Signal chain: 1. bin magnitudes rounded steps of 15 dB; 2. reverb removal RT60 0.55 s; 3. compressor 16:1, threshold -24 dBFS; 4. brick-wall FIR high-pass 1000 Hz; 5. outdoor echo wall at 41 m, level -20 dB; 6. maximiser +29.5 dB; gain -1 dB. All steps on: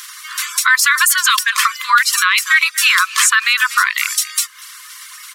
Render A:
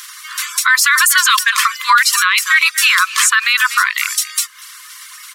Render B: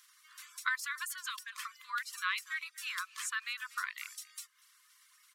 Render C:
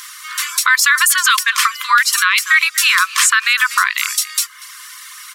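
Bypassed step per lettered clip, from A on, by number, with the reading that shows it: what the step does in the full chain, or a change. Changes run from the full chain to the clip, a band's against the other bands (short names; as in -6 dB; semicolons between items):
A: 3, mean gain reduction 2.5 dB; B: 6, crest factor change +9.0 dB; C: 1, momentary loudness spread change +5 LU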